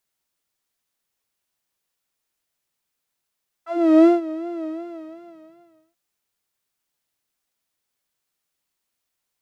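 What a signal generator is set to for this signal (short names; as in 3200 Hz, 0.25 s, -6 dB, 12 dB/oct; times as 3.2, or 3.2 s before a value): synth patch with vibrato E5, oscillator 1 saw, sub -11 dB, noise -19.5 dB, filter bandpass, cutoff 120 Hz, Q 3, filter envelope 3.5 oct, filter decay 0.11 s, filter sustain 40%, attack 0.386 s, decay 0.16 s, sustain -18 dB, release 1.28 s, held 1.01 s, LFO 2.7 Hz, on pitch 85 cents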